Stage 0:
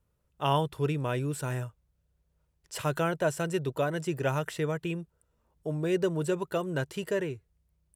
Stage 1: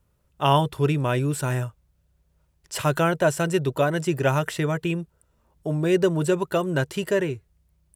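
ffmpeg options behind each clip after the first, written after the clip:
ffmpeg -i in.wav -af "bandreject=frequency=470:width=12,volume=7.5dB" out.wav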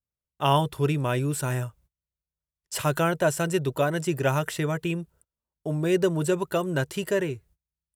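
ffmpeg -i in.wav -af "highshelf=frequency=8000:gain=6,agate=range=-26dB:threshold=-52dB:ratio=16:detection=peak,volume=-2.5dB" out.wav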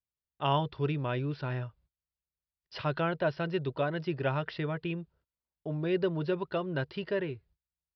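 ffmpeg -i in.wav -af "aresample=11025,aresample=44100,volume=-6.5dB" out.wav

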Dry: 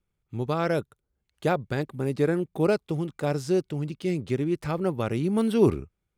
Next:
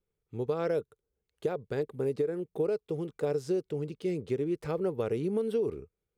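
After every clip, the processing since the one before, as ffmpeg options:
ffmpeg -i in.wav -af "equalizer=frequency=450:width_type=o:width=0.46:gain=14.5,alimiter=limit=-9.5dB:level=0:latency=1:release=446,acompressor=threshold=-18dB:ratio=6,volume=-7.5dB" out.wav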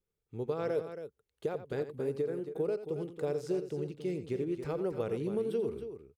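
ffmpeg -i in.wav -af "aecho=1:1:87.46|274.1:0.251|0.316,volume=-3.5dB" out.wav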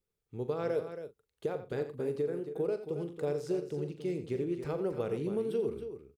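ffmpeg -i in.wav -filter_complex "[0:a]asplit=2[link_01][link_02];[link_02]adelay=41,volume=-12dB[link_03];[link_01][link_03]amix=inputs=2:normalize=0" out.wav

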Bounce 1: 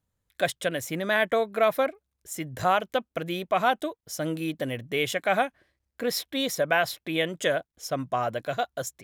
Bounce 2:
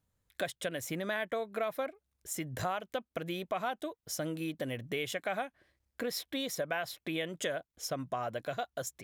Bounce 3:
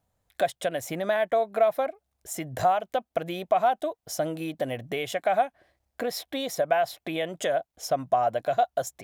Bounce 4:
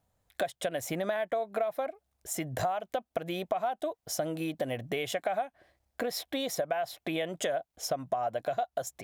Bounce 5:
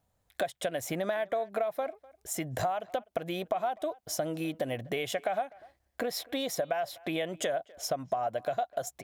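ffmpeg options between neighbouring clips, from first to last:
ffmpeg -i in.wav -af "acompressor=threshold=-35dB:ratio=3" out.wav
ffmpeg -i in.wav -af "equalizer=frequency=710:width_type=o:width=0.65:gain=12.5,volume=3dB" out.wav
ffmpeg -i in.wav -af "acompressor=threshold=-28dB:ratio=5" out.wav
ffmpeg -i in.wav -filter_complex "[0:a]asplit=2[link_01][link_02];[link_02]adelay=250,highpass=300,lowpass=3400,asoftclip=type=hard:threshold=-24.5dB,volume=-22dB[link_03];[link_01][link_03]amix=inputs=2:normalize=0" out.wav

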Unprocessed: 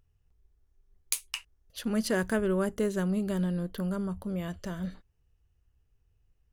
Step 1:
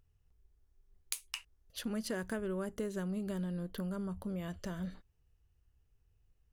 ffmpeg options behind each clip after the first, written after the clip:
ffmpeg -i in.wav -af "acompressor=threshold=-34dB:ratio=3,volume=-2dB" out.wav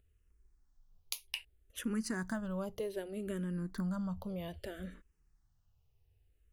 ffmpeg -i in.wav -filter_complex "[0:a]asplit=2[link_01][link_02];[link_02]afreqshift=-0.63[link_03];[link_01][link_03]amix=inputs=2:normalize=1,volume=3dB" out.wav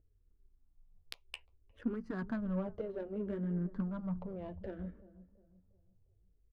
ffmpeg -i in.wav -filter_complex "[0:a]asplit=2[link_01][link_02];[link_02]adelay=355,lowpass=frequency=1500:poles=1,volume=-16.5dB,asplit=2[link_03][link_04];[link_04]adelay=355,lowpass=frequency=1500:poles=1,volume=0.41,asplit=2[link_05][link_06];[link_06]adelay=355,lowpass=frequency=1500:poles=1,volume=0.41,asplit=2[link_07][link_08];[link_08]adelay=355,lowpass=frequency=1500:poles=1,volume=0.41[link_09];[link_01][link_03][link_05][link_07][link_09]amix=inputs=5:normalize=0,flanger=delay=6.2:depth=9.2:regen=-31:speed=0.48:shape=triangular,adynamicsmooth=sensitivity=4:basefreq=760,volume=5dB" out.wav

